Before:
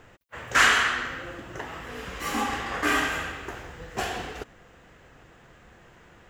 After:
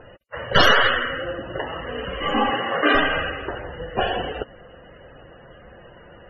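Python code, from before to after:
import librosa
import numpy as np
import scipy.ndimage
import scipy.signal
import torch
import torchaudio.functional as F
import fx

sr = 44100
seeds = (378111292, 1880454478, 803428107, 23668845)

y = fx.tracing_dist(x, sr, depth_ms=0.41)
y = scipy.signal.sosfilt(scipy.signal.ellip(4, 1.0, 40, 12000.0, 'lowpass', fs=sr, output='sos'), y)
y = fx.small_body(y, sr, hz=(550.0, 2900.0), ring_ms=25, db=9)
y = fx.highpass(y, sr, hz=100.0, slope=24, at=(2.5, 2.95))
y = fx.spec_topn(y, sr, count=64)
y = F.gain(torch.from_numpy(y), 7.5).numpy()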